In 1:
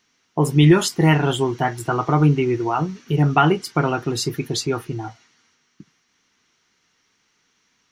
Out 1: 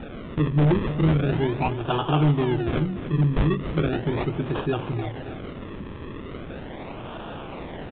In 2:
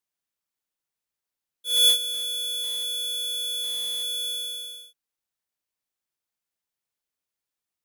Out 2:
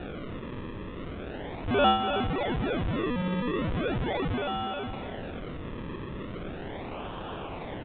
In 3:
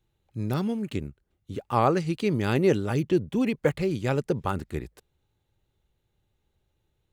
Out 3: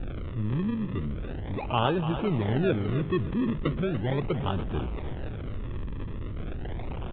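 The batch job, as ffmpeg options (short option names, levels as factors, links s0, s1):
-filter_complex "[0:a]aeval=exprs='val(0)+0.5*0.0562*sgn(val(0))':c=same,lowshelf=f=62:g=7,acrossover=split=380[s0][s1];[s1]acrusher=samples=41:mix=1:aa=0.000001:lfo=1:lforange=41:lforate=0.38[s2];[s0][s2]amix=inputs=2:normalize=0,aeval=exprs='0.398*(abs(mod(val(0)/0.398+3,4)-2)-1)':c=same,aecho=1:1:291|582|873:0.282|0.0846|0.0254,aresample=8000,aresample=44100,volume=0.562"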